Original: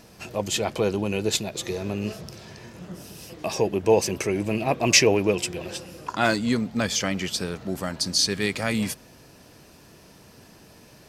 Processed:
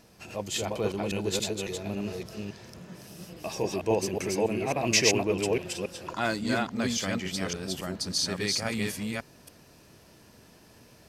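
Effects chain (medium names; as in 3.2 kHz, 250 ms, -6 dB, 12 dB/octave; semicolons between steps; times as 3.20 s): chunks repeated in reverse 279 ms, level -1 dB; trim -7 dB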